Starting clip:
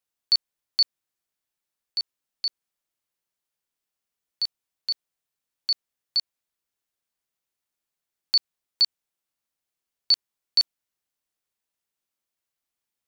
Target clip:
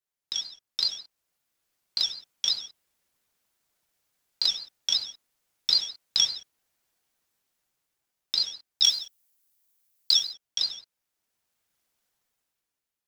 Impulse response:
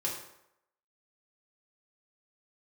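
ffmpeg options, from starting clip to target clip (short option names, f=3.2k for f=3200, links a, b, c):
-filter_complex "[0:a]asettb=1/sr,asplit=3[a][b][c];[a]atrim=end=8.824[d];[b]atrim=start=8.82:end=10.13,asetpts=PTS-STARTPTS,afade=t=in:d=0.004:c=qsin,afade=t=out:st=1.306:d=0.004:c=qsin,aemphasis=mode=production:type=75kf[e];[c]atrim=start=10.126[f];[d][e]acrossfade=d=0.004:c1=hsin:c2=qsin[g];[g][f]acrossfade=d=0.004:c1=qsin:c2=hsin,dynaudnorm=f=150:g=13:m=13.5dB[h];[1:a]atrim=start_sample=2205,afade=t=out:st=0.3:d=0.01,atrim=end_sample=13671,asetrate=48510,aresample=44100[i];[h][i]afir=irnorm=-1:irlink=0,aeval=exprs='val(0)*sin(2*PI*710*n/s+710*0.65/5.3*sin(2*PI*5.3*n/s))':c=same,volume=-3.5dB"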